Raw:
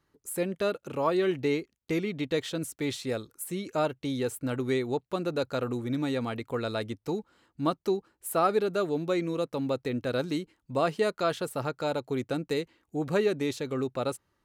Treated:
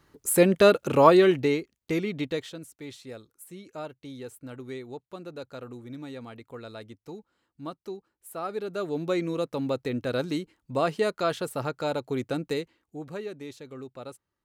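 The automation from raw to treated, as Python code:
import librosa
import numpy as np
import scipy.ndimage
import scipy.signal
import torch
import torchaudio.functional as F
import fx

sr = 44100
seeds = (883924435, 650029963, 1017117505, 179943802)

y = fx.gain(x, sr, db=fx.line((1.05, 11.0), (1.57, 1.5), (2.23, 1.5), (2.64, -10.0), (8.38, -10.0), (9.06, 1.0), (12.49, 1.0), (13.17, -10.5)))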